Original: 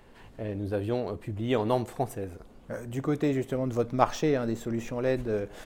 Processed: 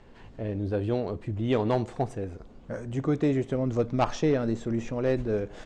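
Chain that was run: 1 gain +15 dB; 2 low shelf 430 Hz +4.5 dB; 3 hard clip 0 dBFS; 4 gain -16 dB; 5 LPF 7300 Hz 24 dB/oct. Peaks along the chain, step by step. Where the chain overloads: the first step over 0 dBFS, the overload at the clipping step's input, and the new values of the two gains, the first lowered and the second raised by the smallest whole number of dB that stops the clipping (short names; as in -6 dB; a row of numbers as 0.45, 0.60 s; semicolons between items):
+8.5, +10.0, 0.0, -16.0, -15.5 dBFS; step 1, 10.0 dB; step 1 +5 dB, step 4 -6 dB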